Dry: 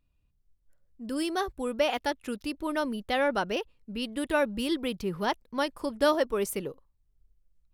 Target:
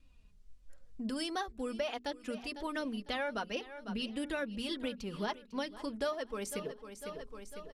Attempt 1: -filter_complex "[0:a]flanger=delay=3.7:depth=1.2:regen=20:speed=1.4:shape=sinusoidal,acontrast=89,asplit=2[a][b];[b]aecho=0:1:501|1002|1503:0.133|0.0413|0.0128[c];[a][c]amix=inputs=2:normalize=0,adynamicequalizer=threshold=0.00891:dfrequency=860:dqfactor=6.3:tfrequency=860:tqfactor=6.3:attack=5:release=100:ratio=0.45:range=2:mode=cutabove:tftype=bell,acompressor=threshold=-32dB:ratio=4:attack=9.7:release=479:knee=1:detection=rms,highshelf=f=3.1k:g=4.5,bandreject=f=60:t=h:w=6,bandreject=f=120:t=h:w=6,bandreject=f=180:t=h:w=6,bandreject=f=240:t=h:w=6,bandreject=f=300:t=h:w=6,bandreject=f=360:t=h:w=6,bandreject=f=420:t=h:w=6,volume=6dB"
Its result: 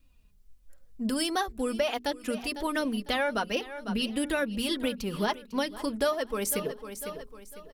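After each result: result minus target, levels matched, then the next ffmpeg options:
compressor: peak gain reduction -8 dB; 8000 Hz band +4.0 dB
-filter_complex "[0:a]flanger=delay=3.7:depth=1.2:regen=20:speed=1.4:shape=sinusoidal,acontrast=89,asplit=2[a][b];[b]aecho=0:1:501|1002|1503:0.133|0.0413|0.0128[c];[a][c]amix=inputs=2:normalize=0,adynamicequalizer=threshold=0.00891:dfrequency=860:dqfactor=6.3:tfrequency=860:tqfactor=6.3:attack=5:release=100:ratio=0.45:range=2:mode=cutabove:tftype=bell,acompressor=threshold=-42.5dB:ratio=4:attack=9.7:release=479:knee=1:detection=rms,highshelf=f=3.1k:g=4.5,bandreject=f=60:t=h:w=6,bandreject=f=120:t=h:w=6,bandreject=f=180:t=h:w=6,bandreject=f=240:t=h:w=6,bandreject=f=300:t=h:w=6,bandreject=f=360:t=h:w=6,bandreject=f=420:t=h:w=6,volume=6dB"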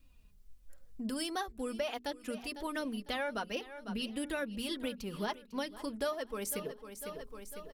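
8000 Hz band +4.5 dB
-filter_complex "[0:a]flanger=delay=3.7:depth=1.2:regen=20:speed=1.4:shape=sinusoidal,acontrast=89,asplit=2[a][b];[b]aecho=0:1:501|1002|1503:0.133|0.0413|0.0128[c];[a][c]amix=inputs=2:normalize=0,adynamicequalizer=threshold=0.00891:dfrequency=860:dqfactor=6.3:tfrequency=860:tqfactor=6.3:attack=5:release=100:ratio=0.45:range=2:mode=cutabove:tftype=bell,lowpass=7.7k,acompressor=threshold=-42.5dB:ratio=4:attack=9.7:release=479:knee=1:detection=rms,highshelf=f=3.1k:g=4.5,bandreject=f=60:t=h:w=6,bandreject=f=120:t=h:w=6,bandreject=f=180:t=h:w=6,bandreject=f=240:t=h:w=6,bandreject=f=300:t=h:w=6,bandreject=f=360:t=h:w=6,bandreject=f=420:t=h:w=6,volume=6dB"

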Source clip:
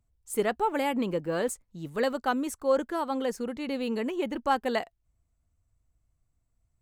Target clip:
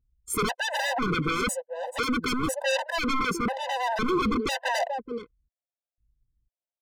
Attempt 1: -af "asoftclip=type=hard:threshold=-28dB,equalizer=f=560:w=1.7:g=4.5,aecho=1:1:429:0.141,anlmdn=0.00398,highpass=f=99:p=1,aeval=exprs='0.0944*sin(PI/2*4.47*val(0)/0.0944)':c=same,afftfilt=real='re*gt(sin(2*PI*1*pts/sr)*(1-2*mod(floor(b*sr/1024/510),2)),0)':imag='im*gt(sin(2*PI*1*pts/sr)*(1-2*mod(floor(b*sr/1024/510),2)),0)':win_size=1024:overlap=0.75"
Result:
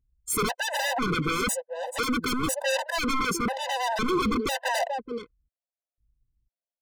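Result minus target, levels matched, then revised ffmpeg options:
8000 Hz band +3.5 dB
-af "asoftclip=type=hard:threshold=-28dB,equalizer=f=560:w=1.7:g=4.5,aecho=1:1:429:0.141,anlmdn=0.00398,highpass=f=99:p=1,highshelf=f=2.9k:g=-8,aeval=exprs='0.0944*sin(PI/2*4.47*val(0)/0.0944)':c=same,afftfilt=real='re*gt(sin(2*PI*1*pts/sr)*(1-2*mod(floor(b*sr/1024/510),2)),0)':imag='im*gt(sin(2*PI*1*pts/sr)*(1-2*mod(floor(b*sr/1024/510),2)),0)':win_size=1024:overlap=0.75"

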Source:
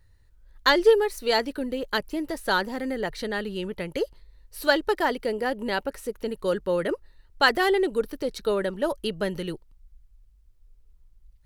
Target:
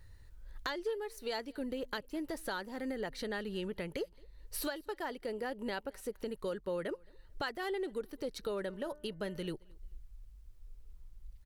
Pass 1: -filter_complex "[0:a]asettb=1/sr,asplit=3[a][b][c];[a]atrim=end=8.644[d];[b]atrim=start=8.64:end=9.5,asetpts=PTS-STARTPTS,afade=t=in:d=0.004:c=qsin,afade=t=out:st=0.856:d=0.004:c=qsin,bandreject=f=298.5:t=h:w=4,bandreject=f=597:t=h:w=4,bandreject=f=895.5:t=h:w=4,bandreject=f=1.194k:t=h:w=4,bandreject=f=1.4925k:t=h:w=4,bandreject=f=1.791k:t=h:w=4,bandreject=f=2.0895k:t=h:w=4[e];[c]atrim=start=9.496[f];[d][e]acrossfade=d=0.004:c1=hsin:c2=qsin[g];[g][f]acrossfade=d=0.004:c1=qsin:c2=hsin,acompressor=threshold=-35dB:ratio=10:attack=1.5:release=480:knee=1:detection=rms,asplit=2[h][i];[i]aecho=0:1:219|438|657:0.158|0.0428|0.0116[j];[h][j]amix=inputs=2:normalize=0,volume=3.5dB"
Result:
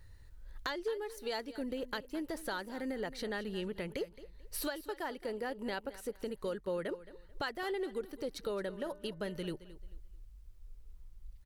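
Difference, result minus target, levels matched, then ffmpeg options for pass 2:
echo-to-direct +11 dB
-filter_complex "[0:a]asettb=1/sr,asplit=3[a][b][c];[a]atrim=end=8.644[d];[b]atrim=start=8.64:end=9.5,asetpts=PTS-STARTPTS,afade=t=in:d=0.004:c=qsin,afade=t=out:st=0.856:d=0.004:c=qsin,bandreject=f=298.5:t=h:w=4,bandreject=f=597:t=h:w=4,bandreject=f=895.5:t=h:w=4,bandreject=f=1.194k:t=h:w=4,bandreject=f=1.4925k:t=h:w=4,bandreject=f=1.791k:t=h:w=4,bandreject=f=2.0895k:t=h:w=4[e];[c]atrim=start=9.496[f];[d][e]acrossfade=d=0.004:c1=hsin:c2=qsin[g];[g][f]acrossfade=d=0.004:c1=qsin:c2=hsin,acompressor=threshold=-35dB:ratio=10:attack=1.5:release=480:knee=1:detection=rms,asplit=2[h][i];[i]aecho=0:1:219|438:0.0447|0.0121[j];[h][j]amix=inputs=2:normalize=0,volume=3.5dB"

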